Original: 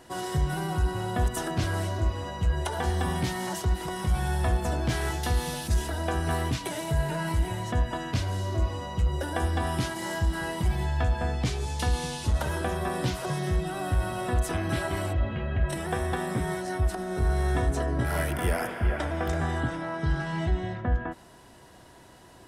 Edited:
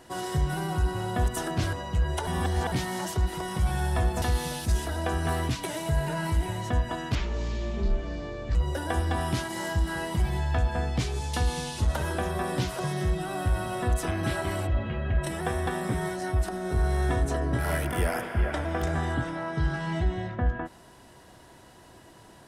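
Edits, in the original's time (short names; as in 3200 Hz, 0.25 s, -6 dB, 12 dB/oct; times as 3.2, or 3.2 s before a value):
1.73–2.21 cut
2.75–3.2 reverse
4.7–5.24 cut
8.17–9.01 speed 60%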